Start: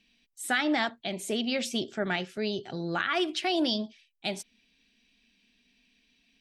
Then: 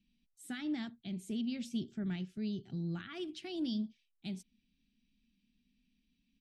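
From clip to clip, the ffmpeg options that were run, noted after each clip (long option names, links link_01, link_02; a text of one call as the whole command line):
ffmpeg -i in.wav -af "firequalizer=gain_entry='entry(180,0);entry(540,-24);entry(3100,-16)':delay=0.05:min_phase=1" out.wav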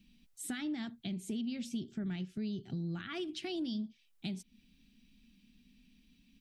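ffmpeg -i in.wav -af "acompressor=threshold=-51dB:ratio=3,volume=11.5dB" out.wav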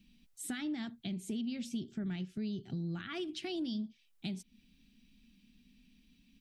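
ffmpeg -i in.wav -af anull out.wav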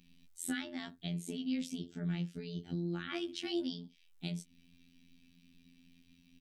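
ffmpeg -i in.wav -filter_complex "[0:a]asplit=2[link_01][link_02];[link_02]adelay=15,volume=-7.5dB[link_03];[link_01][link_03]amix=inputs=2:normalize=0,afftfilt=real='hypot(re,im)*cos(PI*b)':imag='0':win_size=2048:overlap=0.75,volume=4dB" out.wav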